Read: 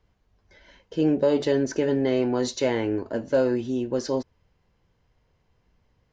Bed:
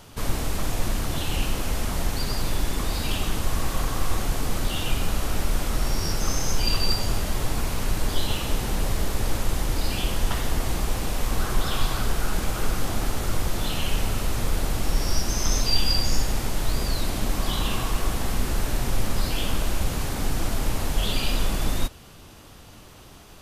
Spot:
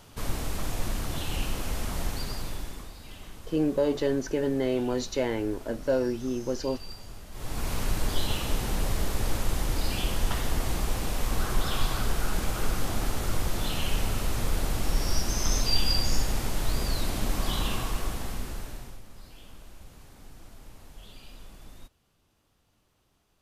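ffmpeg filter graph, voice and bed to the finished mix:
-filter_complex "[0:a]adelay=2550,volume=0.631[s0];[1:a]volume=3.55,afade=t=out:st=2.06:d=0.88:silence=0.199526,afade=t=in:st=7.31:d=0.42:silence=0.158489,afade=t=out:st=17.59:d=1.42:silence=0.0944061[s1];[s0][s1]amix=inputs=2:normalize=0"

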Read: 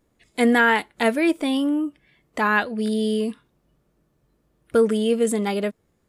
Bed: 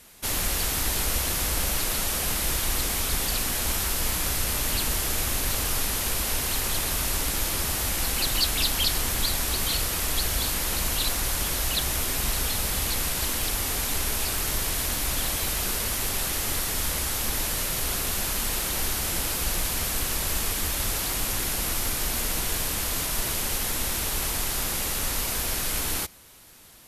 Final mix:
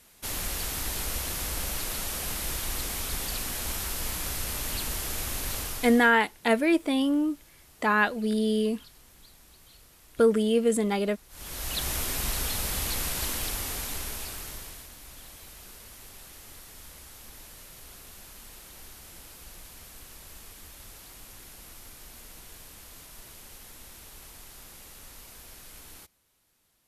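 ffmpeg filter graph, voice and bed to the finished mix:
-filter_complex "[0:a]adelay=5450,volume=0.708[s0];[1:a]volume=9.44,afade=t=out:st=5.57:d=0.56:silence=0.0707946,afade=t=in:st=11.29:d=0.59:silence=0.0530884,afade=t=out:st=13.25:d=1.64:silence=0.149624[s1];[s0][s1]amix=inputs=2:normalize=0"

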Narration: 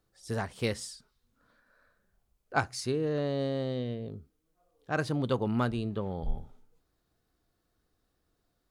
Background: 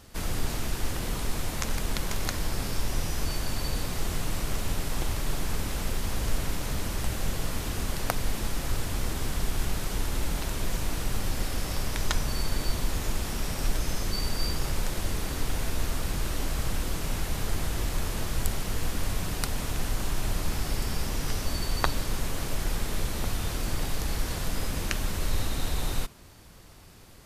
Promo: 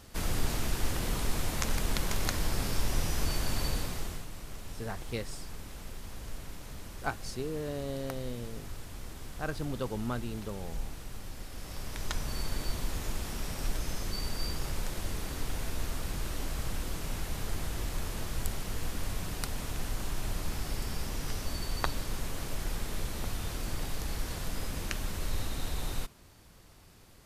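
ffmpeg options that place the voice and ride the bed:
-filter_complex "[0:a]adelay=4500,volume=0.501[s0];[1:a]volume=2.24,afade=t=out:st=3.64:d=0.63:silence=0.237137,afade=t=in:st=11.49:d=0.89:silence=0.398107[s1];[s0][s1]amix=inputs=2:normalize=0"

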